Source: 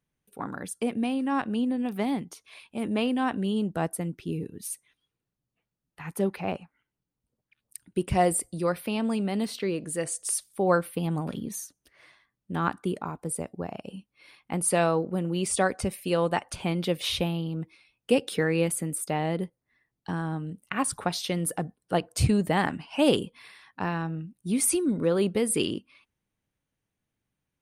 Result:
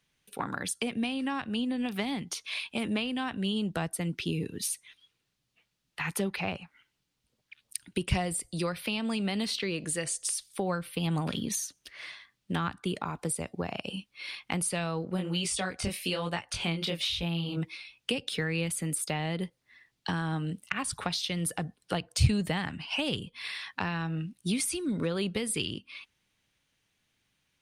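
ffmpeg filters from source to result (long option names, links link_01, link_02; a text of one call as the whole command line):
ffmpeg -i in.wav -filter_complex "[0:a]asplit=3[link_01][link_02][link_03];[link_01]afade=type=out:start_time=15.16:duration=0.02[link_04];[link_02]flanger=delay=17.5:depth=7.5:speed=1.1,afade=type=in:start_time=15.16:duration=0.02,afade=type=out:start_time=17.56:duration=0.02[link_05];[link_03]afade=type=in:start_time=17.56:duration=0.02[link_06];[link_04][link_05][link_06]amix=inputs=3:normalize=0,equalizer=frequency=3600:width=0.44:gain=14,acrossover=split=150[link_07][link_08];[link_08]acompressor=threshold=-32dB:ratio=10[link_09];[link_07][link_09]amix=inputs=2:normalize=0,volume=2.5dB" out.wav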